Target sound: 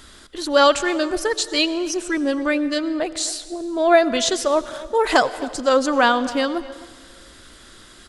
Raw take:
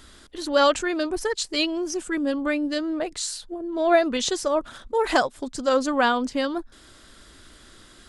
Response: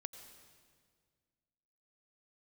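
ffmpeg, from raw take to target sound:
-filter_complex "[0:a]asplit=2[s0][s1];[s1]adelay=260,highpass=300,lowpass=3400,asoftclip=type=hard:threshold=0.15,volume=0.126[s2];[s0][s2]amix=inputs=2:normalize=0,asplit=2[s3][s4];[1:a]atrim=start_sample=2205,lowshelf=f=290:g=-9[s5];[s4][s5]afir=irnorm=-1:irlink=0,volume=1.26[s6];[s3][s6]amix=inputs=2:normalize=0"

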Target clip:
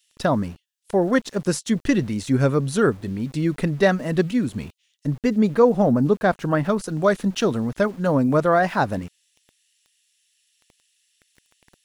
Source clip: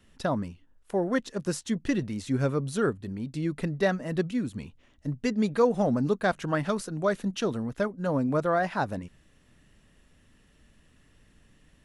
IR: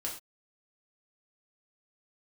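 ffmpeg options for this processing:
-filter_complex "[0:a]asettb=1/sr,asplit=3[s0][s1][s2];[s0]atrim=end=5.184[s3];[s1]atrim=start=5.18:end=6.84,asetpts=PTS-STARTPTS,afade=t=in:d=0.004:c=qsin,afade=t=out:st=1.656:d=0.004:c=qsin,highshelf=f=2100:g=-9.5[s4];[s2]atrim=start=6.836[s5];[s3][s4]acrossfade=d=0.004:c1=hsin:c2=qsin[s6];[s6][s5]acrossfade=d=0.004:c1=qsin:c2=hsin,acrossover=split=3000[s7][s8];[s7]aeval=exprs='val(0)*gte(abs(val(0)),0.00316)':c=same[s9];[s9][s8]amix=inputs=2:normalize=0,volume=2.37"

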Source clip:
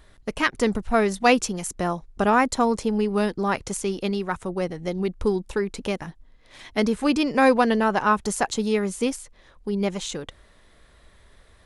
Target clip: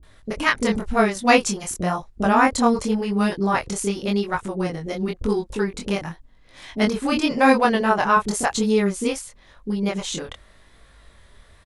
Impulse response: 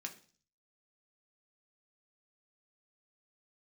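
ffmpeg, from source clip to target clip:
-filter_complex "[0:a]acrossover=split=410[s0][s1];[s1]adelay=30[s2];[s0][s2]amix=inputs=2:normalize=0,flanger=delay=18.5:depth=7:speed=0.92,volume=2"

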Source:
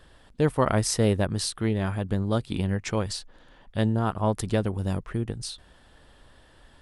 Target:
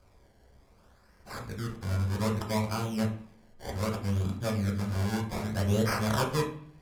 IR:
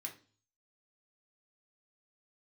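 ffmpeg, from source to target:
-filter_complex "[0:a]areverse,highshelf=f=7100:g=6,acrusher=samples=24:mix=1:aa=0.000001:lfo=1:lforange=24:lforate=0.64[s0];[1:a]atrim=start_sample=2205,asetrate=27342,aresample=44100[s1];[s0][s1]afir=irnorm=-1:irlink=0,volume=0.501"

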